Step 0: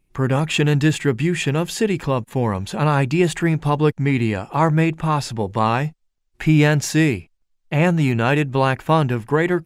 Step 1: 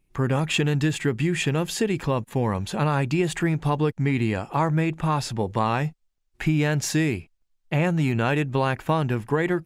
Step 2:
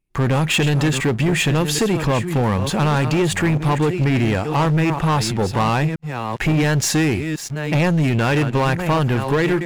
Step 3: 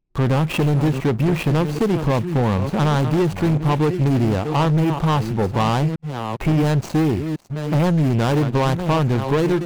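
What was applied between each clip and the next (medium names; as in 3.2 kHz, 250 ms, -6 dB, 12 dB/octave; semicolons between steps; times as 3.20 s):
compression, threshold -16 dBFS, peak gain reduction 6 dB; trim -2 dB
chunks repeated in reverse 596 ms, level -11.5 dB; waveshaping leveller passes 3; trim -2 dB
median filter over 25 samples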